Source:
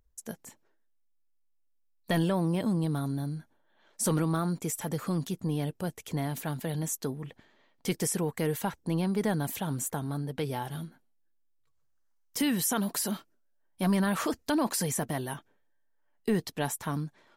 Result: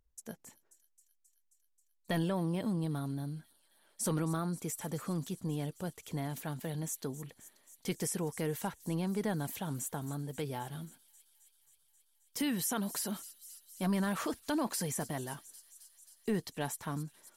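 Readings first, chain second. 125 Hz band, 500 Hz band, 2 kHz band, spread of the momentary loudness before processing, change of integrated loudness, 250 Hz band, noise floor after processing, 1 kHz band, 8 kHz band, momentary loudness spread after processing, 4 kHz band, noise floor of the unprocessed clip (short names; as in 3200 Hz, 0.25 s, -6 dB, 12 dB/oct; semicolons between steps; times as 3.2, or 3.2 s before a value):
-5.5 dB, -5.5 dB, -5.5 dB, 11 LU, -5.5 dB, -5.5 dB, -74 dBFS, -5.5 dB, -5.0 dB, 15 LU, -5.5 dB, -69 dBFS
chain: thin delay 0.267 s, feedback 76%, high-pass 4900 Hz, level -13 dB; gain -5.5 dB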